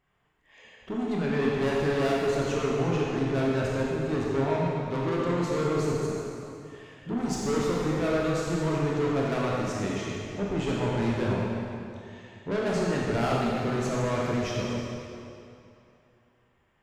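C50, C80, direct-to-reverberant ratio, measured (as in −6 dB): −2.5 dB, −1.0 dB, −5.0 dB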